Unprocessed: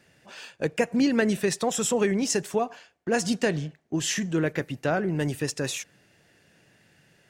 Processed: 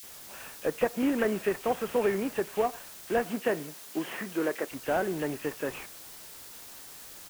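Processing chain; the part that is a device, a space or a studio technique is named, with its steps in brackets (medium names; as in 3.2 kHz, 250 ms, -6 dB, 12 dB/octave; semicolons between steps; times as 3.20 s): army field radio (band-pass 310–2900 Hz; CVSD coder 16 kbps; white noise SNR 15 dB); 3.19–4.67 s: high-pass 120 Hz -> 250 Hz 12 dB/octave; bands offset in time highs, lows 30 ms, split 2.3 kHz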